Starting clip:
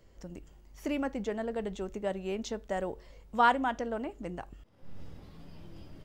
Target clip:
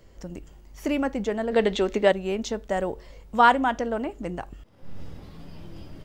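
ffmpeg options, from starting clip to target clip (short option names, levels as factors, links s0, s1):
-filter_complex "[0:a]asplit=3[s0][s1][s2];[s0]afade=t=out:st=1.51:d=0.02[s3];[s1]equalizer=f=125:t=o:w=1:g=-10,equalizer=f=250:t=o:w=1:g=8,equalizer=f=500:t=o:w=1:g=6,equalizer=f=1000:t=o:w=1:g=3,equalizer=f=2000:t=o:w=1:g=9,equalizer=f=4000:t=o:w=1:g=12,afade=t=in:st=1.51:d=0.02,afade=t=out:st=2.11:d=0.02[s4];[s2]afade=t=in:st=2.11:d=0.02[s5];[s3][s4][s5]amix=inputs=3:normalize=0,volume=2.24"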